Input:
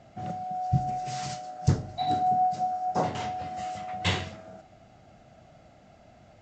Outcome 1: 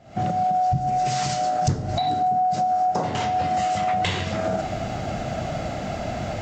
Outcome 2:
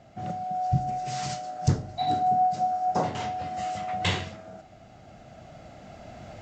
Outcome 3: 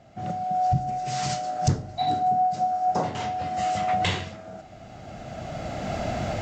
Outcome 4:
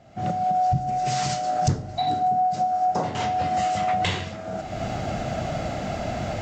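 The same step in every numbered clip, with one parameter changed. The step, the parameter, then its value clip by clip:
camcorder AGC, rising by: 90, 5.2, 14, 36 dB per second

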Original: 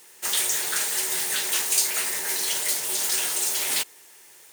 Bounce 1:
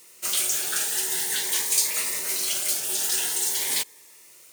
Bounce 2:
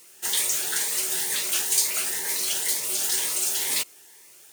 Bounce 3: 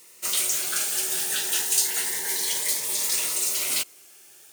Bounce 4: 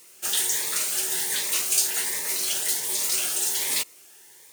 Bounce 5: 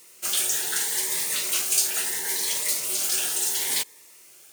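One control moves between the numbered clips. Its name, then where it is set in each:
phaser whose notches keep moving one way, speed: 0.47, 2.1, 0.3, 1.3, 0.73 Hertz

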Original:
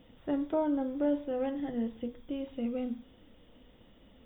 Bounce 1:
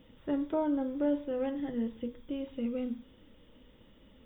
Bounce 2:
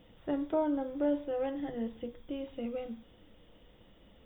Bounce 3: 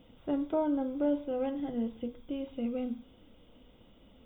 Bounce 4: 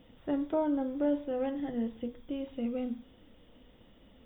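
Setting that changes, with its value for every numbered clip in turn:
notch filter, centre frequency: 720, 250, 1,800, 6,900 Hertz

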